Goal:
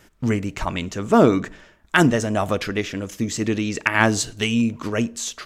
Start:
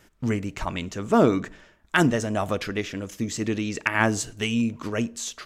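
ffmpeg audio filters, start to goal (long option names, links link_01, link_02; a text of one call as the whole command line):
ffmpeg -i in.wav -filter_complex "[0:a]asettb=1/sr,asplit=3[link_01][link_02][link_03];[link_01]atrim=end=3.944[link_04];[link_02]atrim=start=3.94:end=4.44,asetpts=PTS-STARTPTS,afade=type=in:duration=0.004:curve=qsin,afade=type=out:start_time=0.496:duration=0.004:curve=qsin,equalizer=frequency=4000:width_type=o:width=0.61:gain=7[link_05];[link_03]atrim=start=4.436[link_06];[link_04][link_05]acrossfade=duration=0.004:curve1=hsin:curve2=qsin[link_07];[link_07][link_06]acrossfade=duration=0.004:curve1=qsin:curve2=hsin,volume=4dB" out.wav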